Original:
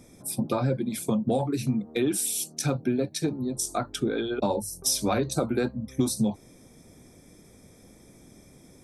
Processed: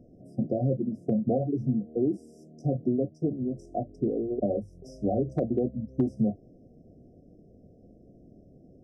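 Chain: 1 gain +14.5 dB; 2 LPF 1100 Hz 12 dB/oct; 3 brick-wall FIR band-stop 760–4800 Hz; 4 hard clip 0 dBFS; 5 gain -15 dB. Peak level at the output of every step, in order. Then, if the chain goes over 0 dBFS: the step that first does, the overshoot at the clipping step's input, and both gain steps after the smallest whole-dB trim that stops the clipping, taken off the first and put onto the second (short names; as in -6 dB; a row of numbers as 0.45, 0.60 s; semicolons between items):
+3.5, +3.0, +3.0, 0.0, -15.0 dBFS; step 1, 3.0 dB; step 1 +11.5 dB, step 5 -12 dB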